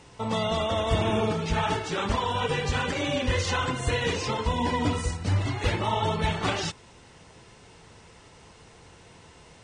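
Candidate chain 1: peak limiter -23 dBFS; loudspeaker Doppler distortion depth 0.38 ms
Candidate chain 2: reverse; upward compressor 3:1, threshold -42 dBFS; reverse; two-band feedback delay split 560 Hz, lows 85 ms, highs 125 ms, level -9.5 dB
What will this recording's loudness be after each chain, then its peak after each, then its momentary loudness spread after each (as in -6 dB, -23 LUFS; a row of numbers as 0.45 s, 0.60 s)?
-32.0 LUFS, -26.5 LUFS; -23.0 dBFS, -12.5 dBFS; 20 LU, 3 LU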